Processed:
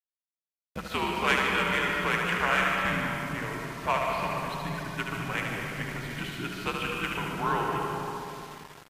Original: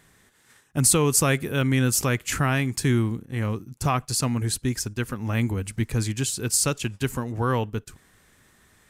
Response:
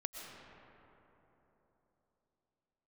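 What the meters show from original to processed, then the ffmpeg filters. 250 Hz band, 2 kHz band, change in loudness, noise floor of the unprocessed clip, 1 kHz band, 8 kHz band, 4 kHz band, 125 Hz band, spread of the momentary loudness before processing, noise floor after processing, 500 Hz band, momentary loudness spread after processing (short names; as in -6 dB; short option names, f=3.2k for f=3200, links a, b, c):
-9.0 dB, +3.5 dB, -5.0 dB, -60 dBFS, +3.0 dB, -20.5 dB, -2.5 dB, -13.0 dB, 9 LU, under -85 dBFS, -4.0 dB, 10 LU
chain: -filter_complex "[0:a]bandreject=f=1.3k:w=15,bandreject=f=230.8:t=h:w=4,bandreject=f=461.6:t=h:w=4,bandreject=f=692.4:t=h:w=4,bandreject=f=923.2:t=h:w=4,bandreject=f=1.154k:t=h:w=4,acrossover=split=810[a][b];[a]acompressor=threshold=-36dB:ratio=8[c];[c][b]amix=inputs=2:normalize=0,highpass=f=200:t=q:w=0.5412,highpass=f=200:t=q:w=1.307,lowpass=f=3.4k:t=q:w=0.5176,lowpass=f=3.4k:t=q:w=0.7071,lowpass=f=3.4k:t=q:w=1.932,afreqshift=-86,asplit=2[d][e];[e]adynamicsmooth=sensitivity=4:basefreq=720,volume=-2dB[f];[d][f]amix=inputs=2:normalize=0,aeval=exprs='0.376*(cos(1*acos(clip(val(0)/0.376,-1,1)))-cos(1*PI/2))+0.075*(cos(3*acos(clip(val(0)/0.376,-1,1)))-cos(3*PI/2))+0.0168*(cos(5*acos(clip(val(0)/0.376,-1,1)))-cos(5*PI/2))':c=same,aecho=1:1:75|150|225|300|375|450|525|600:0.562|0.337|0.202|0.121|0.0729|0.0437|0.0262|0.0157[g];[1:a]atrim=start_sample=2205[h];[g][h]afir=irnorm=-1:irlink=0,aeval=exprs='val(0)*gte(abs(val(0)),0.00531)':c=same,volume=4.5dB" -ar 44100 -c:a libvorbis -b:a 48k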